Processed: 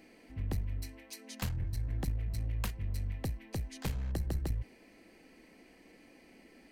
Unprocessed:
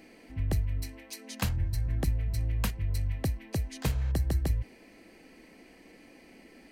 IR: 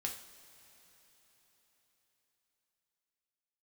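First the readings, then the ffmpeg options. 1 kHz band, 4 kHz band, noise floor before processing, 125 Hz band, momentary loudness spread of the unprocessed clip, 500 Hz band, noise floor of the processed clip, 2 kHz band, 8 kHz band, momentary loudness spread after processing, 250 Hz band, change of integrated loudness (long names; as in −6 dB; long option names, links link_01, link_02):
−5.5 dB, −5.5 dB, −56 dBFS, −6.0 dB, 9 LU, −6.0 dB, −60 dBFS, −6.0 dB, −5.5 dB, 8 LU, −5.0 dB, −6.0 dB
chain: -af "aeval=exprs='clip(val(0),-1,0.0299)':channel_layout=same,volume=-4.5dB"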